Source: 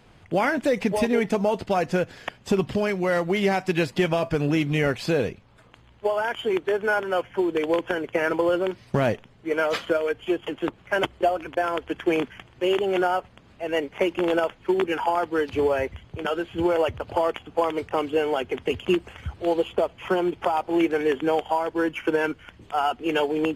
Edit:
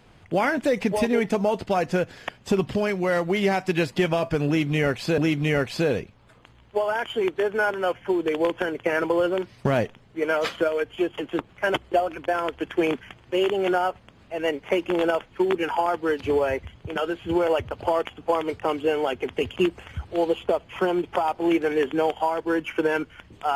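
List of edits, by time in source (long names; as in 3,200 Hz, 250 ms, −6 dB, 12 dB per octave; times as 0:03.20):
0:04.47–0:05.18: repeat, 2 plays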